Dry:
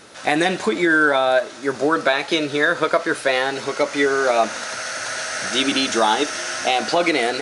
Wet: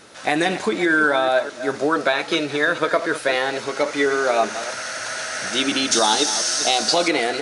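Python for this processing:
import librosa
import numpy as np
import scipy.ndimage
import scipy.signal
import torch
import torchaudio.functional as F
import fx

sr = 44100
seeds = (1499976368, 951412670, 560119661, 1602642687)

y = fx.reverse_delay(x, sr, ms=214, wet_db=-12.0)
y = fx.high_shelf_res(y, sr, hz=3400.0, db=8.5, q=1.5, at=(5.91, 7.08))
y = y * 10.0 ** (-1.5 / 20.0)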